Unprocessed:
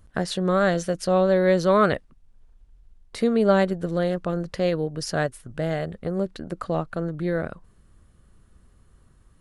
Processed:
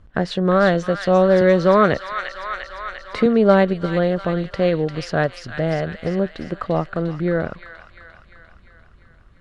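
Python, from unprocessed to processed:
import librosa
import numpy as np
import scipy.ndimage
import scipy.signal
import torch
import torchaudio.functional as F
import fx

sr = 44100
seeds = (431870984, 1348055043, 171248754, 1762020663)

y = scipy.signal.sosfilt(scipy.signal.butter(2, 3500.0, 'lowpass', fs=sr, output='sos'), x)
y = fx.echo_wet_highpass(y, sr, ms=348, feedback_pct=61, hz=1800.0, wet_db=-4.5)
y = fx.band_squash(y, sr, depth_pct=40, at=(1.41, 3.26))
y = y * 10.0 ** (5.0 / 20.0)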